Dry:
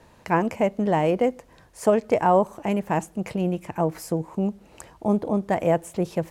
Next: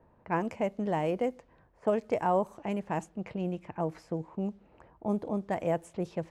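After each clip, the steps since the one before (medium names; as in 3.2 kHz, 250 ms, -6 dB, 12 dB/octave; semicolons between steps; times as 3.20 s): level-controlled noise filter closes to 1.1 kHz, open at -18 dBFS; trim -8.5 dB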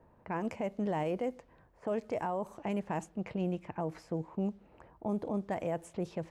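peak limiter -25.5 dBFS, peak gain reduction 9.5 dB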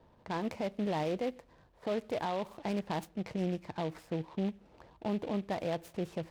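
delay time shaken by noise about 2.3 kHz, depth 0.041 ms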